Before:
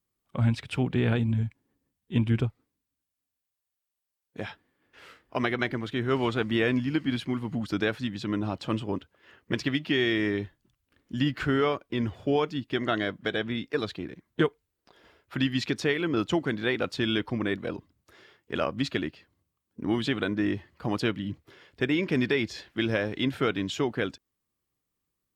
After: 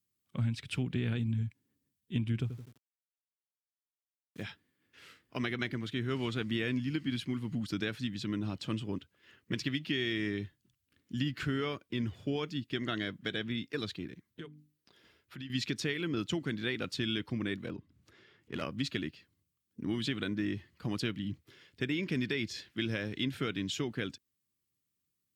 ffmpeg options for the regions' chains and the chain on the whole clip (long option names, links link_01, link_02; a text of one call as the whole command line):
ffmpeg -i in.wav -filter_complex "[0:a]asettb=1/sr,asplit=3[link_01][link_02][link_03];[link_01]atrim=end=2.414[link_04];[link_02]atrim=start=2.41:end=4.43,asetpts=PTS-STARTPTS,afade=type=in:duration=0.004:curve=qsin,afade=type=out:start_time=2.016:duration=0.004:curve=qsin,asplit=2[link_05][link_06];[link_06]adelay=84,lowpass=frequency=2200:poles=1,volume=-11dB,asplit=2[link_07][link_08];[link_08]adelay=84,lowpass=frequency=2200:poles=1,volume=0.45,asplit=2[link_09][link_10];[link_10]adelay=84,lowpass=frequency=2200:poles=1,volume=0.45,asplit=2[link_11][link_12];[link_12]adelay=84,lowpass=frequency=2200:poles=1,volume=0.45,asplit=2[link_13][link_14];[link_14]adelay=84,lowpass=frequency=2200:poles=1,volume=0.45[link_15];[link_05][link_07][link_09][link_11][link_13][link_15]amix=inputs=6:normalize=0,atrim=end_sample=89082,aeval=exprs='val(0)*gte(abs(val(0)),0.00299)':channel_layout=same[link_16];[link_03]atrim=start=4.426[link_17];[link_04][link_16]acrossfade=duration=0.004:curve1=hsin:curve2=qsin[link_18];[link_18][link_17]acrossfade=duration=0.004:curve1=qsin:curve2=hsin,asettb=1/sr,asplit=3[link_19][link_20][link_21];[link_19]atrim=end=14.264[link_22];[link_20]atrim=start=14.26:end=15.5,asetpts=PTS-STARTPTS,afade=type=in:duration=0.004:curve=qsin,afade=type=out:start_time=1.236:duration=0.004:curve=qsin,equalizer=frequency=7500:width=3.7:gain=-2.5,bandreject=frequency=50:width_type=h:width=6,bandreject=frequency=100:width_type=h:width=6,bandreject=frequency=150:width_type=h:width=6,bandreject=frequency=200:width_type=h:width=6,bandreject=frequency=250:width_type=h:width=6,bandreject=frequency=300:width_type=h:width=6,acompressor=threshold=-43dB:ratio=2.5:attack=3.2:release=140:knee=1:detection=peak[link_23];[link_21]atrim=start=15.496[link_24];[link_22][link_23]acrossfade=duration=0.004:curve1=hsin:curve2=qsin[link_25];[link_25][link_24]acrossfade=duration=0.004:curve1=qsin:curve2=hsin,asettb=1/sr,asplit=3[link_26][link_27][link_28];[link_26]atrim=end=17.674[link_29];[link_27]atrim=start=17.67:end=18.62,asetpts=PTS-STARTPTS,afade=type=in:duration=0.004:curve=qsin,afade=type=out:start_time=0.946:duration=0.004:curve=qsin,lowpass=frequency=1900:poles=1,aeval=exprs='clip(val(0),-1,0.0501)':channel_layout=same,acompressor=mode=upward:threshold=-49dB:ratio=2.5:attack=3.2:release=140:knee=2.83:detection=peak[link_30];[link_28]atrim=start=18.616[link_31];[link_29][link_30]acrossfade=duration=0.004:curve1=hsin:curve2=qsin[link_32];[link_32][link_31]acrossfade=duration=0.004:curve1=qsin:curve2=hsin,highpass=95,equalizer=frequency=740:width=0.62:gain=-13.5,acompressor=threshold=-29dB:ratio=3" out.wav